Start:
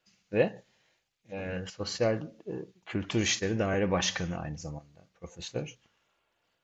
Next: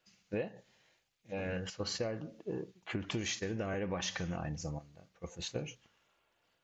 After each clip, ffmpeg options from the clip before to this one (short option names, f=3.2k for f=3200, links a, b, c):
-af "acompressor=threshold=-33dB:ratio=10"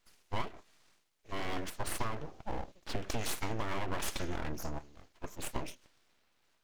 -af "aeval=exprs='abs(val(0))':c=same,volume=4dB"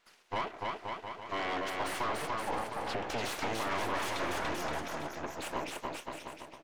-filter_complex "[0:a]aecho=1:1:290|522|707.6|856.1|974.9:0.631|0.398|0.251|0.158|0.1,asplit=2[a][b];[b]highpass=f=720:p=1,volume=26dB,asoftclip=type=tanh:threshold=-13.5dB[c];[a][c]amix=inputs=2:normalize=0,lowpass=f=2.1k:p=1,volume=-6dB,volume=-9dB"